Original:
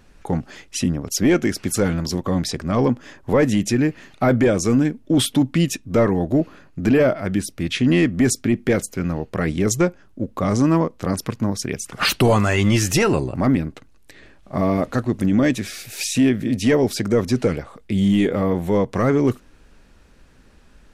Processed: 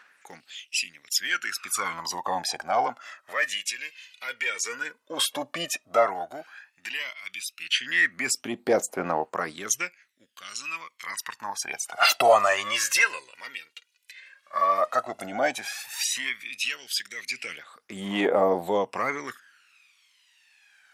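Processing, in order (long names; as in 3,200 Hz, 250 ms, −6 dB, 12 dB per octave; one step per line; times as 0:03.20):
phase shifter 0.11 Hz, delay 2.2 ms, feedback 66%
auto-filter high-pass sine 0.31 Hz 740–2,800 Hz
low-shelf EQ 360 Hz +8 dB
level −5 dB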